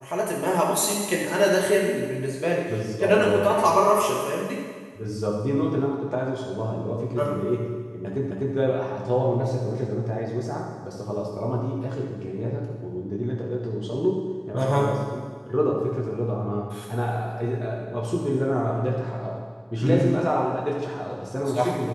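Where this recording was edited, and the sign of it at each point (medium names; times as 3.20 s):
8.31 s: repeat of the last 0.25 s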